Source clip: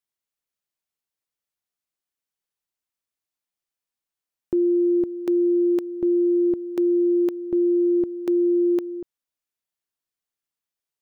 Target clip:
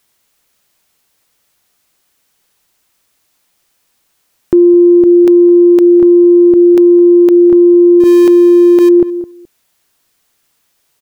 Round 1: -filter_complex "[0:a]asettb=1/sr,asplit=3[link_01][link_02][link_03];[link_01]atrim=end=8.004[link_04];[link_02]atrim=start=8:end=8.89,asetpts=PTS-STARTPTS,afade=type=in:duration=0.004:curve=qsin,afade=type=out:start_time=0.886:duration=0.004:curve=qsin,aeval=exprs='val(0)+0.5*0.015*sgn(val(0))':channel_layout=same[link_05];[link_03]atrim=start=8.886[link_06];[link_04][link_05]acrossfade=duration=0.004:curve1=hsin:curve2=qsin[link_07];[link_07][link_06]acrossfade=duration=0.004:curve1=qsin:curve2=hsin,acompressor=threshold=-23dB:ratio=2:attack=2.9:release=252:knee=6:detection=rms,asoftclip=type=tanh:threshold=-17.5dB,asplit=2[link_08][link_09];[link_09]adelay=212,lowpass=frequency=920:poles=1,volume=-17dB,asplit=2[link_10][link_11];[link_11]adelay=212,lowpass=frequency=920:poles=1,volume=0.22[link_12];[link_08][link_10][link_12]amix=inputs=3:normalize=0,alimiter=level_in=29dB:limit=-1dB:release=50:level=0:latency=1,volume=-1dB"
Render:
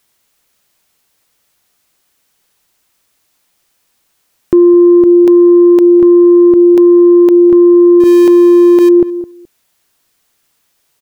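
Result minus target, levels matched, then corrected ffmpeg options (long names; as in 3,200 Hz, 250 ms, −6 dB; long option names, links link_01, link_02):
soft clipping: distortion +16 dB
-filter_complex "[0:a]asettb=1/sr,asplit=3[link_01][link_02][link_03];[link_01]atrim=end=8.004[link_04];[link_02]atrim=start=8:end=8.89,asetpts=PTS-STARTPTS,afade=type=in:duration=0.004:curve=qsin,afade=type=out:start_time=0.886:duration=0.004:curve=qsin,aeval=exprs='val(0)+0.5*0.015*sgn(val(0))':channel_layout=same[link_05];[link_03]atrim=start=8.886[link_06];[link_04][link_05]acrossfade=duration=0.004:curve1=hsin:curve2=qsin[link_07];[link_07][link_06]acrossfade=duration=0.004:curve1=qsin:curve2=hsin,acompressor=threshold=-23dB:ratio=2:attack=2.9:release=252:knee=6:detection=rms,asoftclip=type=tanh:threshold=-9dB,asplit=2[link_08][link_09];[link_09]adelay=212,lowpass=frequency=920:poles=1,volume=-17dB,asplit=2[link_10][link_11];[link_11]adelay=212,lowpass=frequency=920:poles=1,volume=0.22[link_12];[link_08][link_10][link_12]amix=inputs=3:normalize=0,alimiter=level_in=29dB:limit=-1dB:release=50:level=0:latency=1,volume=-1dB"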